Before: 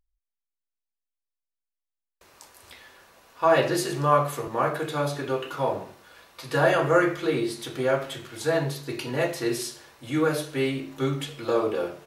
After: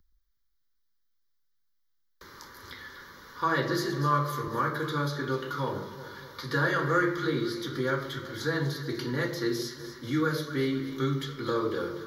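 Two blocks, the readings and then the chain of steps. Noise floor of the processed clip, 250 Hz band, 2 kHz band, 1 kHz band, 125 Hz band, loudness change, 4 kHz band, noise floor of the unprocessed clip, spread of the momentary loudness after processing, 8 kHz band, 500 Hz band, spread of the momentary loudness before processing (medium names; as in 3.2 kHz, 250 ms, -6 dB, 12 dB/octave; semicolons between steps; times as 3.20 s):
-71 dBFS, -1.5 dB, -1.0 dB, -4.0 dB, -0.5 dB, -4.0 dB, -2.0 dB, under -85 dBFS, 17 LU, -7.5 dB, -7.0 dB, 10 LU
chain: static phaser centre 2.6 kHz, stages 6; echo whose repeats swap between lows and highs 123 ms, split 940 Hz, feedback 65%, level -10 dB; three bands compressed up and down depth 40%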